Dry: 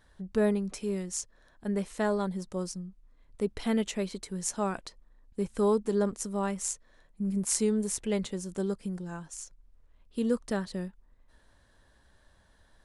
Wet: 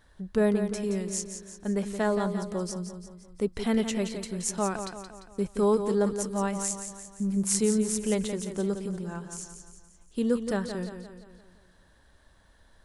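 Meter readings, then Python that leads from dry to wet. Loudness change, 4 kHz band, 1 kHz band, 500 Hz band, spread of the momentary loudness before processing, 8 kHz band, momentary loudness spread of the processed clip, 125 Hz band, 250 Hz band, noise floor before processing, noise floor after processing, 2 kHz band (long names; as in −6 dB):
+2.5 dB, +2.5 dB, +3.0 dB, +2.5 dB, 14 LU, +2.5 dB, 14 LU, +2.5 dB, +2.5 dB, −64 dBFS, −60 dBFS, +2.5 dB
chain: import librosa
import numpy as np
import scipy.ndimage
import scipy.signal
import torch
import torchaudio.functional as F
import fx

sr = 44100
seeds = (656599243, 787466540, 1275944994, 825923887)

y = fx.echo_feedback(x, sr, ms=173, feedback_pct=50, wet_db=-8.5)
y = F.gain(torch.from_numpy(y), 2.0).numpy()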